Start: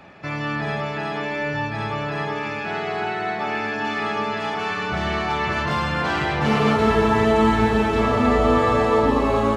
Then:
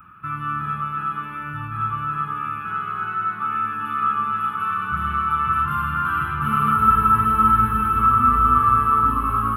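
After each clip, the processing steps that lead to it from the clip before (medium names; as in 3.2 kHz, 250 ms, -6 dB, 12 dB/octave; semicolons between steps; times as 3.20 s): FFT filter 110 Hz 0 dB, 300 Hz -11 dB, 490 Hz -24 dB, 710 Hz -29 dB, 1.3 kHz +13 dB, 1.9 kHz -17 dB, 2.8 kHz -8 dB, 4.6 kHz -30 dB, 6.9 kHz -25 dB, 11 kHz +14 dB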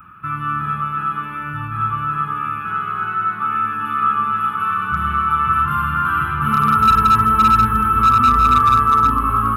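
hard clipper -11.5 dBFS, distortion -21 dB; trim +4 dB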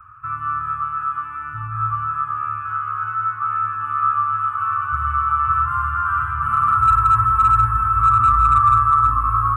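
FFT filter 120 Hz 0 dB, 170 Hz -29 dB, 260 Hz -17 dB, 410 Hz -20 dB, 630 Hz -22 dB, 1.1 kHz +1 dB, 3.4 kHz -17 dB, 5.4 kHz -22 dB, 8.1 kHz -1 dB, 13 kHz -24 dB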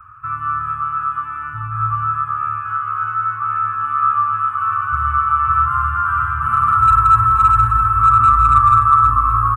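delay 254 ms -12 dB; trim +2.5 dB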